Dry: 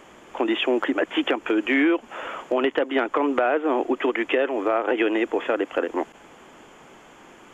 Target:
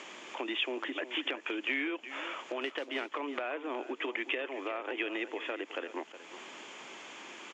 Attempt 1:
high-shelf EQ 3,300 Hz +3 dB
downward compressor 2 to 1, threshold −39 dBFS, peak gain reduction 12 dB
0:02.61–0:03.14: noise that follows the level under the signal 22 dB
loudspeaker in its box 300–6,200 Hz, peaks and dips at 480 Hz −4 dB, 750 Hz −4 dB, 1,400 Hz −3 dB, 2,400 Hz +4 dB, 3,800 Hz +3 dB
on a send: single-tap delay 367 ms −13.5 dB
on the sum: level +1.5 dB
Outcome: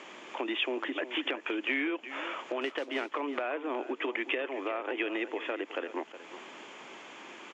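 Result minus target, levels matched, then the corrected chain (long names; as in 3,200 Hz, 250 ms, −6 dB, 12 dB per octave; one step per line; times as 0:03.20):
8,000 Hz band −6.5 dB; downward compressor: peak gain reduction −4 dB
high-shelf EQ 3,300 Hz +11 dB
downward compressor 2 to 1, threshold −45.5 dBFS, peak gain reduction 16 dB
0:02.61–0:03.14: noise that follows the level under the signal 22 dB
loudspeaker in its box 300–6,200 Hz, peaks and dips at 480 Hz −4 dB, 750 Hz −4 dB, 1,400 Hz −3 dB, 2,400 Hz +4 dB, 3,800 Hz +3 dB
on a send: single-tap delay 367 ms −13.5 dB
on the sum: level +1.5 dB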